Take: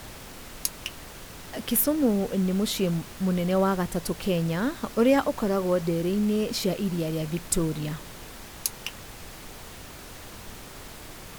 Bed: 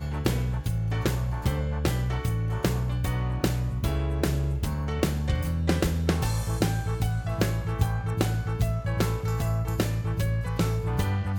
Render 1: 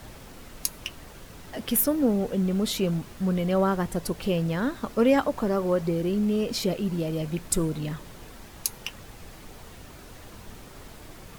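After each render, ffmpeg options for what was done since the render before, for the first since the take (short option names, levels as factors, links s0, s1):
-af "afftdn=nr=6:nf=-43"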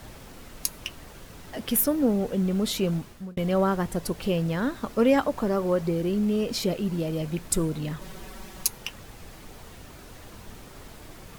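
-filter_complex "[0:a]asettb=1/sr,asplit=3[s0][s1][s2];[s0]atrim=end=8.014[s3];[s1]atrim=start=8.01:end=8.68,asetpts=PTS-STARTPTS,afade=t=in:d=0.004:c=qsin,afade=t=out:st=0.666:d=0.004:c=qsin,aecho=1:1:5.3:0.99,atrim=end_sample=29547[s4];[s2]atrim=start=8.676[s5];[s3][s4]acrossfade=d=0.004:c1=hsin:c2=qsin[s6];[s6][s5]acrossfade=d=0.004:c1=qsin:c2=hsin,asplit=2[s7][s8];[s7]atrim=end=3.37,asetpts=PTS-STARTPTS,afade=t=out:st=2.97:d=0.4[s9];[s8]atrim=start=3.37,asetpts=PTS-STARTPTS,afade=t=in:d=0.004:c=hsin[s10];[s9][s10]concat=n=2:v=0:a=1"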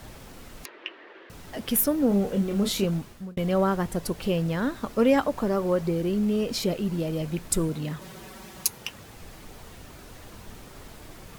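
-filter_complex "[0:a]asettb=1/sr,asplit=3[s0][s1][s2];[s0]atrim=end=0.654[s3];[s1]atrim=start=0.65:end=1.3,asetpts=PTS-STARTPTS,afade=t=in:d=0.004:c=qsin,afade=t=out:st=0.646:d=0.004:c=qsin,highpass=f=350:w=0.5412,highpass=f=350:w=1.3066,equalizer=f=350:t=q:w=4:g=9,equalizer=f=740:t=q:w=4:g=-3,equalizer=f=1800:t=q:w=4:g=7,lowpass=f=3200:w=0.5412,lowpass=f=3200:w=1.3066[s4];[s2]atrim=start=1.296[s5];[s3][s4]acrossfade=d=0.004:c1=hsin:c2=qsin[s6];[s6][s5]acrossfade=d=0.004:c1=qsin:c2=hsin,asettb=1/sr,asplit=3[s7][s8][s9];[s7]atrim=end=2.084[s10];[s8]atrim=start=2.08:end=2.85,asetpts=PTS-STARTPTS,afade=t=in:d=0.004:c=qsin,afade=t=out:st=0.766:d=0.004:c=qsin,asplit=2[s11][s12];[s12]adelay=30,volume=0.531[s13];[s11][s13]amix=inputs=2:normalize=0,atrim=end_sample=33957[s14];[s9]atrim=start=2.846[s15];[s10][s14]acrossfade=d=0.004:c1=hsin:c2=qsin[s16];[s16][s15]acrossfade=d=0.004:c1=qsin:c2=hsin,asettb=1/sr,asplit=3[s17][s18][s19];[s17]atrim=end=7.694[s20];[s18]atrim=start=7.69:end=9.16,asetpts=PTS-STARTPTS,afade=t=in:d=0.004:c=qsin,afade=t=out:st=1.466:d=0.004:c=qsin,highpass=68[s21];[s19]atrim=start=9.156[s22];[s20][s21]acrossfade=d=0.004:c1=hsin:c2=qsin[s23];[s23][s22]acrossfade=d=0.004:c1=qsin:c2=hsin"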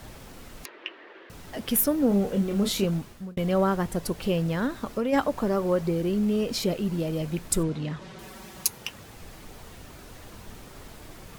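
-filter_complex "[0:a]asplit=3[s0][s1][s2];[s0]afade=t=out:st=4.66:d=0.02[s3];[s1]acompressor=threshold=0.0708:ratio=6:attack=3.2:release=140:knee=1:detection=peak,afade=t=in:st=4.66:d=0.02,afade=t=out:st=5.12:d=0.02[s4];[s2]afade=t=in:st=5.12:d=0.02[s5];[s3][s4][s5]amix=inputs=3:normalize=0,asettb=1/sr,asplit=3[s6][s7][s8];[s6]atrim=end=7.634[s9];[s7]atrim=start=7.63:end=8.19,asetpts=PTS-STARTPTS,afade=t=in:d=0.004:c=qsin,afade=t=out:st=0.556:d=0.004:c=qsin,lowpass=5300[s10];[s8]atrim=start=8.186[s11];[s9][s10]acrossfade=d=0.004:c1=hsin:c2=qsin[s12];[s12][s11]acrossfade=d=0.004:c1=qsin:c2=hsin"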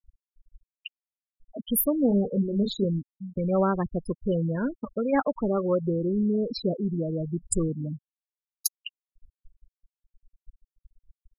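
-af "afftfilt=real='re*gte(hypot(re,im),0.0891)':imag='im*gte(hypot(re,im),0.0891)':win_size=1024:overlap=0.75"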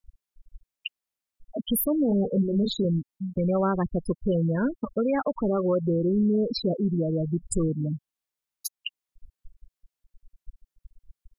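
-filter_complex "[0:a]asplit=2[s0][s1];[s1]acompressor=threshold=0.02:ratio=6,volume=1.06[s2];[s0][s2]amix=inputs=2:normalize=0,alimiter=limit=0.15:level=0:latency=1:release=15"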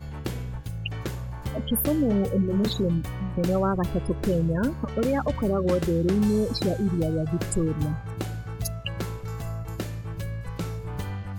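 -filter_complex "[1:a]volume=0.501[s0];[0:a][s0]amix=inputs=2:normalize=0"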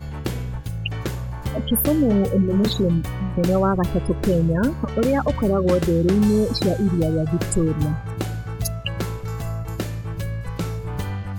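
-af "volume=1.78"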